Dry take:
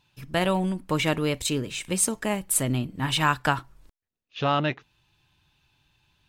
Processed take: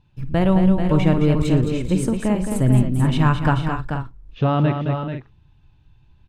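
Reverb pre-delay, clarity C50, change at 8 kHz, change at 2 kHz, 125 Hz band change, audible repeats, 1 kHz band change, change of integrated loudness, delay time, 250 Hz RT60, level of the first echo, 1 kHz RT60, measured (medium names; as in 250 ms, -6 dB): no reverb, no reverb, -10.5 dB, -1.5 dB, +12.5 dB, 5, +2.0 dB, +6.0 dB, 53 ms, no reverb, -15.0 dB, no reverb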